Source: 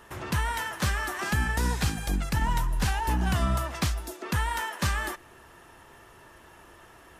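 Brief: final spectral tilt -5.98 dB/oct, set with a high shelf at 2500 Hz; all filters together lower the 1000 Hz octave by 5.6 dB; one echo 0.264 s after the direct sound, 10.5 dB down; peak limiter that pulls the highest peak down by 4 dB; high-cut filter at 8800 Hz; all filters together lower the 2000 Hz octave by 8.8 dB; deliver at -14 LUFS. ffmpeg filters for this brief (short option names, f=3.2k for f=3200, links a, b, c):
-af "lowpass=8.8k,equalizer=f=1k:t=o:g=-4,equalizer=f=2k:t=o:g=-6.5,highshelf=f=2.5k:g=-7.5,alimiter=limit=-21dB:level=0:latency=1,aecho=1:1:264:0.299,volume=18dB"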